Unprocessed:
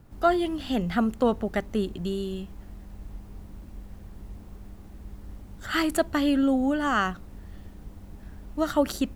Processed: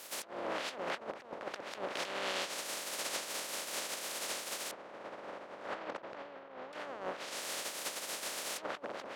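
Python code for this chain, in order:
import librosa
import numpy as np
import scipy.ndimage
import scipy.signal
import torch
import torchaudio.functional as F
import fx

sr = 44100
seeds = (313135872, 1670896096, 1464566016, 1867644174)

y = fx.spec_flatten(x, sr, power=0.12)
y = fx.lowpass(y, sr, hz=1200.0, slope=12, at=(4.71, 6.73))
y = fx.env_lowpass_down(y, sr, base_hz=930.0, full_db=-22.0)
y = scipy.signal.sosfilt(scipy.signal.butter(2, 320.0, 'highpass', fs=sr, output='sos'), y)
y = fx.peak_eq(y, sr, hz=560.0, db=7.0, octaves=0.39)
y = fx.over_compress(y, sr, threshold_db=-39.0, ratio=-0.5)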